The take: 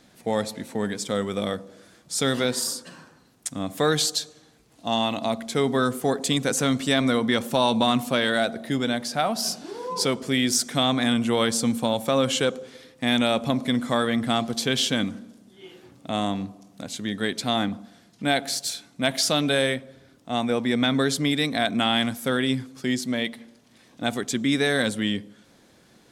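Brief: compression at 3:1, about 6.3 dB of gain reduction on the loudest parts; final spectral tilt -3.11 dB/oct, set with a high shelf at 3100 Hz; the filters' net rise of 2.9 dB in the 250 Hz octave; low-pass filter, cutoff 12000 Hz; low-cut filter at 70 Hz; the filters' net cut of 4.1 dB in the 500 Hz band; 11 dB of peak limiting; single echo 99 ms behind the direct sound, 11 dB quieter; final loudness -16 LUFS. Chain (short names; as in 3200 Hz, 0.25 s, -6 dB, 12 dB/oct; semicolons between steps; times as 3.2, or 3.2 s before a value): HPF 70 Hz; LPF 12000 Hz; bell 250 Hz +4.5 dB; bell 500 Hz -6.5 dB; high shelf 3100 Hz +8.5 dB; compressor 3:1, threshold -22 dBFS; limiter -17 dBFS; echo 99 ms -11 dB; gain +11.5 dB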